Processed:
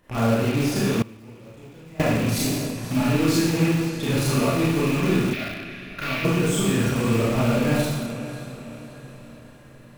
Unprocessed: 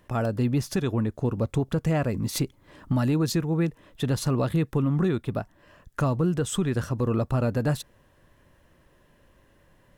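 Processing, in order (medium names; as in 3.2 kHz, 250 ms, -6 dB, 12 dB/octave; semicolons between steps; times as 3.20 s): rattle on loud lows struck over -28 dBFS, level -27 dBFS; hum notches 50/100/150 Hz; on a send: echo that smears into a reverb 533 ms, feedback 50%, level -14 dB; on the sum: Schroeder reverb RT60 1.1 s, combs from 27 ms, DRR -9 dB; in parallel at -10.5 dB: integer overflow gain 17.5 dB; 1.02–2.02 s: on the sum: gate with hold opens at -4 dBFS; 5.33–6.25 s: graphic EQ 125/250/500/1000/2000/4000/8000 Hz -9/-5/-8/-10/+8/+5/-10 dB; trim -4.5 dB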